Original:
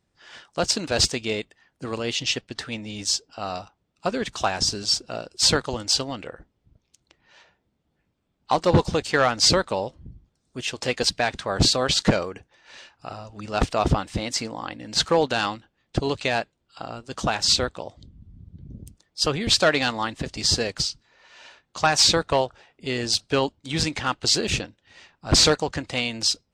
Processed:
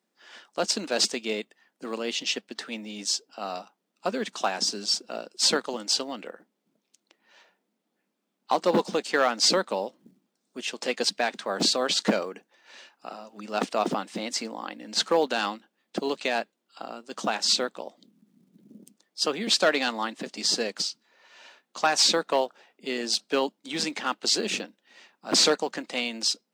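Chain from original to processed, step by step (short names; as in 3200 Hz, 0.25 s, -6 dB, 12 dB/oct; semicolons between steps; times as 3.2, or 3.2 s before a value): companded quantiser 8-bit; elliptic high-pass 200 Hz, stop band 60 dB; gain -2.5 dB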